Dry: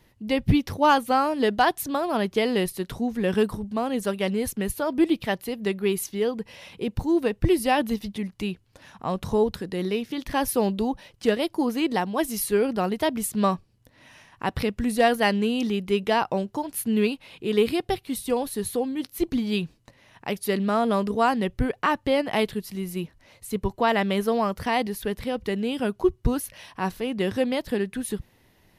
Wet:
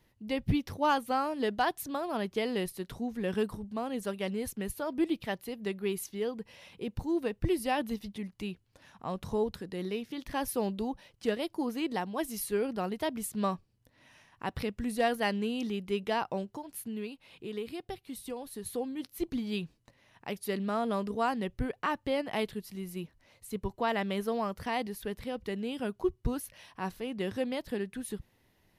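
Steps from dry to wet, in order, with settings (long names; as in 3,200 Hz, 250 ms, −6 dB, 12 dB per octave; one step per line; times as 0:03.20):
0:16.44–0:18.66: downward compressor 2 to 1, threshold −32 dBFS, peak gain reduction 9 dB
level −8.5 dB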